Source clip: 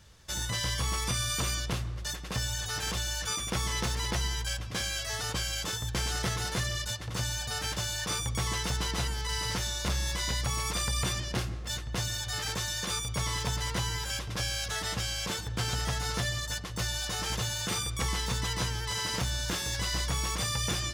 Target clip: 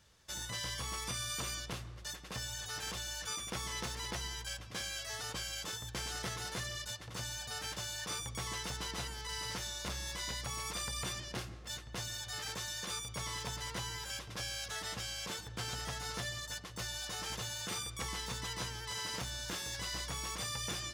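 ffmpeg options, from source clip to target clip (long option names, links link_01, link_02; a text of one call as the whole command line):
ffmpeg -i in.wav -af "lowshelf=frequency=150:gain=-7.5,volume=-7dB" out.wav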